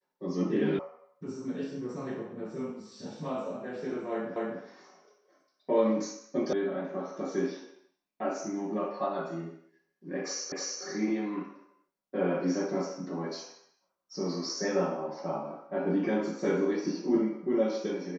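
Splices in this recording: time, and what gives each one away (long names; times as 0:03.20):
0:00.79: cut off before it has died away
0:04.36: the same again, the last 0.25 s
0:06.53: cut off before it has died away
0:10.52: the same again, the last 0.31 s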